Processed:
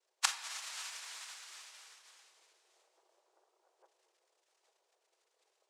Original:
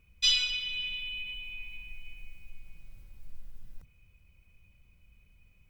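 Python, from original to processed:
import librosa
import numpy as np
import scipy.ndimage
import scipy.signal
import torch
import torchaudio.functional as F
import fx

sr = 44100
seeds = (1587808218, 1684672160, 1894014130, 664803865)

p1 = fx.noise_reduce_blind(x, sr, reduce_db=27)
p2 = fx.noise_vocoder(p1, sr, seeds[0], bands=2)
p3 = fx.gate_flip(p2, sr, shuts_db=-24.0, range_db=-26)
p4 = fx.room_shoebox(p3, sr, seeds[1], volume_m3=1600.0, walls='mixed', distance_m=0.62)
p5 = fx.rider(p4, sr, range_db=3, speed_s=0.5)
p6 = p4 + F.gain(torch.from_numpy(p5), 2.0).numpy()
p7 = fx.brickwall_highpass(p6, sr, low_hz=340.0)
y = F.gain(torch.from_numpy(p7), 8.0).numpy()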